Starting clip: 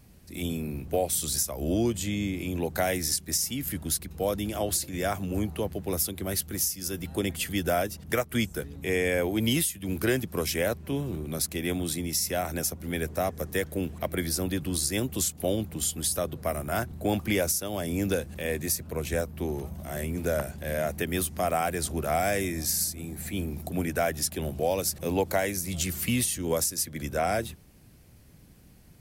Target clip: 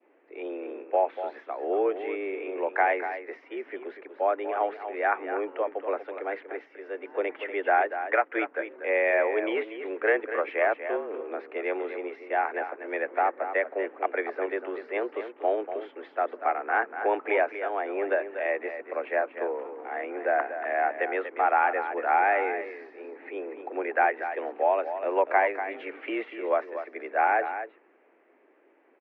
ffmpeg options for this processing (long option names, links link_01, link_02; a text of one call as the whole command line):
ffmpeg -i in.wav -af "highpass=frequency=270:width_type=q:width=0.5412,highpass=frequency=270:width_type=q:width=1.307,lowpass=frequency=2200:width_type=q:width=0.5176,lowpass=frequency=2200:width_type=q:width=0.7071,lowpass=frequency=2200:width_type=q:width=1.932,afreqshift=99,adynamicequalizer=threshold=0.00708:dfrequency=1400:dqfactor=0.96:tfrequency=1400:tqfactor=0.96:attack=5:release=100:ratio=0.375:range=3:mode=boostabove:tftype=bell,aecho=1:1:240:0.316,volume=1.5dB" out.wav